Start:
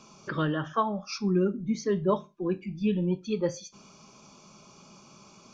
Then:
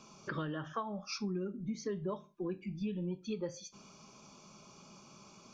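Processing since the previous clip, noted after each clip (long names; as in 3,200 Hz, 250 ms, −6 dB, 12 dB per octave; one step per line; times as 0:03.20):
downward compressor 6 to 1, threshold −31 dBFS, peak gain reduction 11 dB
level −3.5 dB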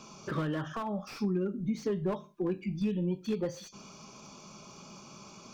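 slew-rate limiting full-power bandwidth 10 Hz
level +6.5 dB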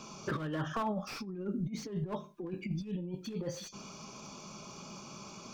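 compressor whose output falls as the input rises −34 dBFS, ratio −0.5
level −1 dB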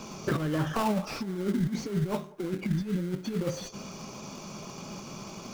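in parallel at −5 dB: sample-rate reduction 1,800 Hz, jitter 20%
on the sum: delay with a band-pass on its return 180 ms, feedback 71%, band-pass 730 Hz, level −22 dB
level +4 dB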